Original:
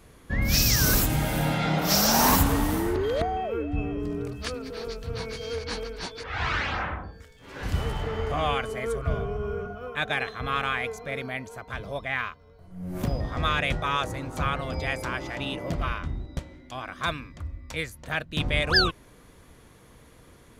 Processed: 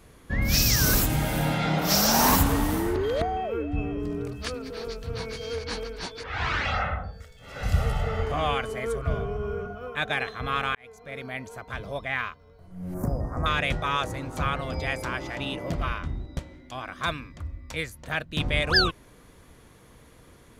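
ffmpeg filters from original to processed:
ffmpeg -i in.wav -filter_complex "[0:a]asettb=1/sr,asplit=3[link_01][link_02][link_03];[link_01]atrim=end=6.654[link_04];[link_02]atrim=start=6.65:end=8.23,asetpts=PTS-STARTPTS,afade=type=in:duration=0.004:curve=qsin,afade=type=out:start_time=1.576:duration=0.004:curve=qsin,aecho=1:1:1.5:0.78,atrim=end_sample=69678[link_05];[link_03]atrim=start=8.226[link_06];[link_04][link_05]acrossfade=duration=0.004:curve1=hsin:curve2=qsin[link_07];[link_07][link_06]acrossfade=duration=0.004:curve1=qsin:curve2=hsin,asettb=1/sr,asplit=3[link_08][link_09][link_10];[link_08]atrim=end=12.944[link_11];[link_09]atrim=start=12.94:end=13.46,asetpts=PTS-STARTPTS,afade=type=in:duration=0.004:curve=qsin,afade=type=out:start_time=0.516:duration=0.004:curve=qsin,asuperstop=centerf=3200:order=4:qfactor=0.54[link_12];[link_10]atrim=start=13.456[link_13];[link_11][link_12]acrossfade=duration=0.004:curve1=hsin:curve2=qsin[link_14];[link_14][link_13]acrossfade=duration=0.004:curve1=qsin:curve2=hsin,asplit=2[link_15][link_16];[link_15]atrim=end=10.75,asetpts=PTS-STARTPTS,afade=type=out:start_time=10.746:duration=0.004:curve=hsin[link_17];[link_16]atrim=start=10.75,asetpts=PTS-STARTPTS,afade=type=in:duration=0.72[link_18];[link_17][link_18]concat=n=2:v=0:a=1" out.wav

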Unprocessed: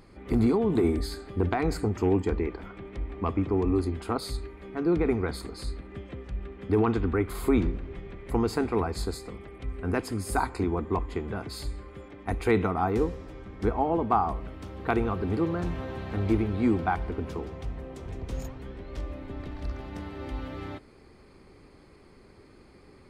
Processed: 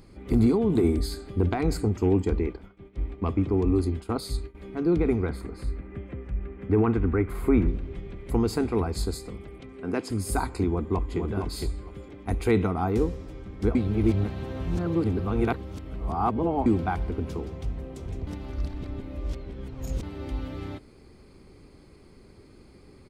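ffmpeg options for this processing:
ffmpeg -i in.wav -filter_complex "[0:a]asettb=1/sr,asplit=3[link_01][link_02][link_03];[link_01]atrim=end=1.834[link_04];[link_02]atrim=start=1.83:end=4.55,asetpts=PTS-STARTPTS,afade=type=in:duration=0.004:curve=qsin,afade=type=out:start_time=2.716:duration=0.004:curve=qsin,agate=range=-33dB:threshold=-35dB:ratio=3:release=100:detection=peak[link_05];[link_03]atrim=start=4.546[link_06];[link_04][link_05]acrossfade=duration=0.004:curve1=hsin:curve2=qsin[link_07];[link_07][link_06]acrossfade=duration=0.004:curve1=qsin:curve2=hsin,asettb=1/sr,asplit=3[link_08][link_09][link_10];[link_08]atrim=end=5.294[link_11];[link_09]atrim=start=5.29:end=7.68,asetpts=PTS-STARTPTS,afade=type=in:duration=0.004:curve=qsin,afade=type=out:start_time=2.386:duration=0.004:curve=qsin,highshelf=frequency=2900:width_type=q:width=1.5:gain=-10.5[link_12];[link_10]atrim=start=7.676[link_13];[link_11][link_12]acrossfade=duration=0.004:curve1=hsin:curve2=qsin[link_14];[link_14][link_13]acrossfade=duration=0.004:curve1=qsin:curve2=hsin,asettb=1/sr,asplit=3[link_15][link_16][link_17];[link_15]atrim=end=9.604[link_18];[link_16]atrim=start=9.6:end=10.1,asetpts=PTS-STARTPTS,afade=type=in:duration=0.004:curve=qsin,afade=type=out:start_time=0.496:duration=0.004:curve=qsin,highpass=200,lowpass=7500[link_19];[link_17]atrim=start=10.096[link_20];[link_18][link_19]acrossfade=duration=0.004:curve1=hsin:curve2=qsin[link_21];[link_21][link_20]acrossfade=duration=0.004:curve1=qsin:curve2=hsin,asplit=2[link_22][link_23];[link_23]afade=type=in:start_time=10.68:duration=0.01,afade=type=out:start_time=11.2:duration=0.01,aecho=0:1:460|920|1380:0.562341|0.0843512|0.0126527[link_24];[link_22][link_24]amix=inputs=2:normalize=0,asplit=5[link_25][link_26][link_27][link_28][link_29];[link_25]atrim=end=13.752[link_30];[link_26]atrim=start=13.748:end=16.662,asetpts=PTS-STARTPTS,areverse[link_31];[link_27]atrim=start=16.658:end=18.272[link_32];[link_28]atrim=start=18.268:end=20.032,asetpts=PTS-STARTPTS,areverse[link_33];[link_29]atrim=start=20.028[link_34];[link_30][link_31]acrossfade=duration=0.004:curve1=hsin:curve2=hsin[link_35];[link_35][link_32]acrossfade=duration=0.004:curve1=hsin:curve2=hsin[link_36];[link_36][link_33]acrossfade=duration=0.004:curve1=hsin:curve2=hsin[link_37];[link_37][link_34]acrossfade=duration=0.004:curve1=hsin:curve2=hsin,equalizer=frequency=1200:width=0.41:gain=-7,bandreject=frequency=1800:width=26,volume=4dB" out.wav

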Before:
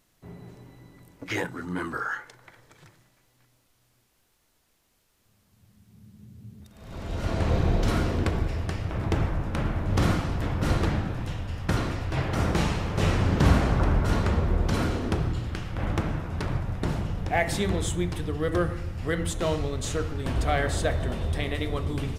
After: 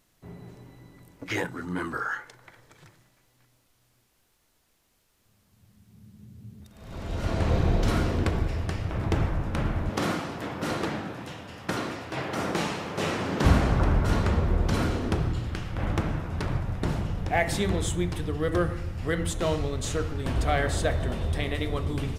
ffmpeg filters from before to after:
ffmpeg -i in.wav -filter_complex "[0:a]asettb=1/sr,asplit=3[link_01][link_02][link_03];[link_01]atrim=end=9.894[link_04];[link_02]atrim=start=9.89:end=13.45,asetpts=PTS-STARTPTS,afade=type=in:duration=0.004:curve=qsin,afade=type=out:start_time=3.556:duration=0.004:curve=qsin,highpass=220[link_05];[link_03]atrim=start=13.446[link_06];[link_04][link_05]acrossfade=duration=0.004:curve1=hsin:curve2=qsin[link_07];[link_07][link_06]acrossfade=duration=0.004:curve1=qsin:curve2=hsin" out.wav

